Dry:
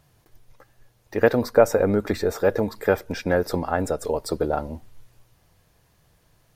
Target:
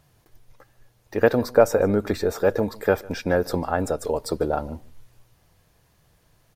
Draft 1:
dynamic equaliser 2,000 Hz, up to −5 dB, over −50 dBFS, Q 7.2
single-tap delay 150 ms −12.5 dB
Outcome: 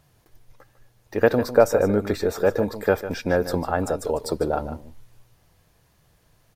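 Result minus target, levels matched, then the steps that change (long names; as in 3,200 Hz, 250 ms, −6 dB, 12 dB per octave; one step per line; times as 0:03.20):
echo-to-direct +11 dB
change: single-tap delay 150 ms −23.5 dB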